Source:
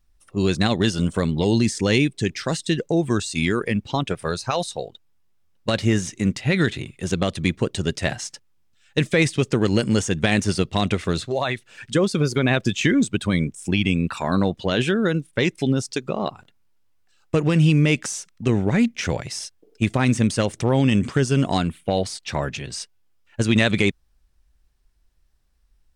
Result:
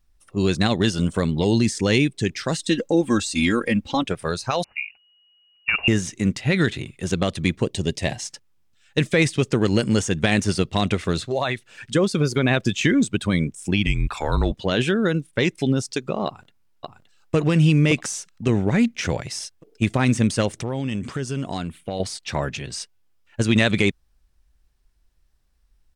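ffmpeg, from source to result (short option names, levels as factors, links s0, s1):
-filter_complex "[0:a]asettb=1/sr,asplit=3[s0][s1][s2];[s0]atrim=end=2.594[s3];[s1]atrim=start=2.59:end=4.04,asetpts=PTS-STARTPTS,afade=t=in:d=0.004:c=qsin,afade=t=out:st=1.446:d=0.004:c=qsin,aecho=1:1:3.7:0.76,atrim=end_sample=63945[s4];[s2]atrim=start=4.036[s5];[s3][s4]acrossfade=d=0.004:c1=hsin:c2=qsin[s6];[s6][s5]acrossfade=d=0.004:c1=qsin:c2=hsin,asettb=1/sr,asplit=3[s7][s8][s9];[s7]atrim=end=4.644[s10];[s8]atrim=start=4.64:end=5.88,asetpts=PTS-STARTPTS,afade=t=in:d=0.004:c=qsin,afade=t=out:st=1.236:d=0.004:c=qsin,lowpass=f=2500:t=q:w=0.5098,lowpass=f=2500:t=q:w=0.6013,lowpass=f=2500:t=q:w=0.9,lowpass=f=2500:t=q:w=2.563,afreqshift=-2900[s11];[s9]atrim=start=5.876[s12];[s10][s11]acrossfade=d=0.004:c1=hsin:c2=qsin[s13];[s13][s12]acrossfade=d=0.004:c1=qsin:c2=hsin,asettb=1/sr,asplit=3[s14][s15][s16];[s14]atrim=end=7.644[s17];[s15]atrim=start=7.64:end=8.26,asetpts=PTS-STARTPTS,afade=t=in:d=0.004:c=qsin,afade=t=out:st=0.616:d=0.004:c=qsin,equalizer=f=1400:t=o:w=0.39:g=-13[s18];[s16]atrim=start=8.256[s19];[s17][s18]acrossfade=d=0.004:c1=hsin:c2=qsin[s20];[s20][s19]acrossfade=d=0.004:c1=qsin:c2=hsin,asettb=1/sr,asplit=3[s21][s22][s23];[s21]atrim=end=13.864[s24];[s22]atrim=start=13.86:end=14.52,asetpts=PTS-STARTPTS,afade=t=in:d=0.004:c=qsin,afade=t=out:st=0.656:d=0.004:c=qsin,afreqshift=-130[s25];[s23]atrim=start=14.516[s26];[s24][s25]acrossfade=d=0.004:c1=hsin:c2=qsin[s27];[s27][s26]acrossfade=d=0.004:c1=qsin:c2=hsin,asplit=2[s28][s29];[s29]afade=t=in:st=16.26:d=0.01,afade=t=out:st=17.35:d=0.01,aecho=0:1:570|1140|1710|2280|2850:0.530884|0.212354|0.0849415|0.0339766|0.0135906[s30];[s28][s30]amix=inputs=2:normalize=0,asettb=1/sr,asplit=3[s31][s32][s33];[s31]atrim=end=20.484[s34];[s32]atrim=start=20.48:end=22,asetpts=PTS-STARTPTS,afade=t=in:d=0.004:c=qsin,afade=t=out:st=1.516:d=0.004:c=qsin,acompressor=threshold=0.0355:ratio=2:attack=3.2:release=140:knee=1:detection=peak[s35];[s33]atrim=start=21.996[s36];[s34][s35]acrossfade=d=0.004:c1=hsin:c2=qsin[s37];[s37][s36]acrossfade=d=0.004:c1=qsin:c2=hsin"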